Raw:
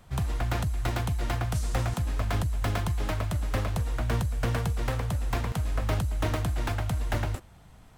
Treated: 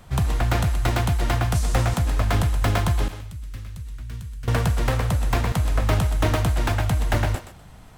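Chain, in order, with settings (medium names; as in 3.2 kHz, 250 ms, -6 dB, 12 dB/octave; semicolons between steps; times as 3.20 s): 3.08–4.48 s: amplifier tone stack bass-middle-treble 6-0-2; thinning echo 125 ms, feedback 22%, level -9 dB; trim +7 dB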